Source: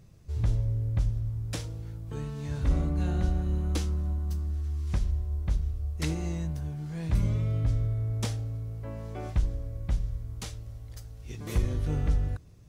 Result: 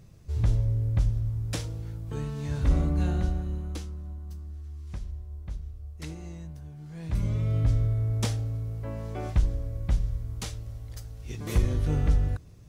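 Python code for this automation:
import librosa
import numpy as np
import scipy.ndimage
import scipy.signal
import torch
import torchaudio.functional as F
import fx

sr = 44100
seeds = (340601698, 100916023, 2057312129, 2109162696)

y = fx.gain(x, sr, db=fx.line((3.03, 2.5), (3.92, -8.5), (6.69, -8.5), (7.58, 3.0)))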